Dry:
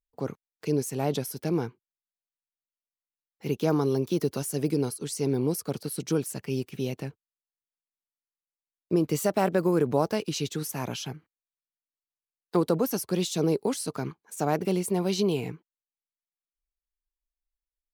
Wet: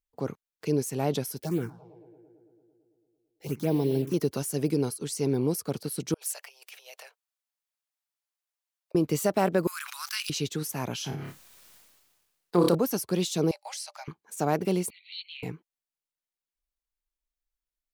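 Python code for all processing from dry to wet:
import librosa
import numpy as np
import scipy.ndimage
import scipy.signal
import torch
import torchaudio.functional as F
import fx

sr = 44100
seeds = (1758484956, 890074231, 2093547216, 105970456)

y = fx.chain(x, sr, fx.block_float(bits=5),
    fx.echo_filtered(ms=112, feedback_pct=77, hz=2900.0, wet_db=-17.5),
    fx.env_phaser(low_hz=180.0, high_hz=1300.0, full_db=-20.0), at=(1.42, 4.14))
y = fx.chain(y, sr, fx.dynamic_eq(hz=900.0, q=0.7, threshold_db=-44.0, ratio=4.0, max_db=-7),
    fx.over_compress(threshold_db=-35.0, ratio=-0.5),
    fx.steep_highpass(hz=570.0, slope=48), at=(6.14, 8.95))
y = fx.chain(y, sr, fx.steep_highpass(hz=1200.0, slope=48),
    fx.high_shelf(hz=2200.0, db=9.5),
    fx.sustainer(db_per_s=32.0), at=(9.67, 10.3))
y = fx.chain(y, sr, fx.room_flutter(wall_m=4.9, rt60_s=0.21),
    fx.sustainer(db_per_s=36.0), at=(10.98, 12.75))
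y = fx.chain(y, sr, fx.cheby_ripple_highpass(hz=570.0, ripple_db=9),
    fx.peak_eq(hz=5600.0, db=9.5, octaves=0.97), at=(13.51, 14.08))
y = fx.chain(y, sr, fx.brickwall_bandpass(low_hz=1900.0, high_hz=4500.0),
    fx.transient(attack_db=-9, sustain_db=-3), at=(14.9, 15.43))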